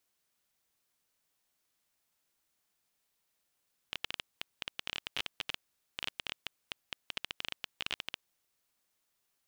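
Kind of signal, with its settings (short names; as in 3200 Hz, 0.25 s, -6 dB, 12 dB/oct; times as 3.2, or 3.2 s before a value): random clicks 14/s -17.5 dBFS 4.40 s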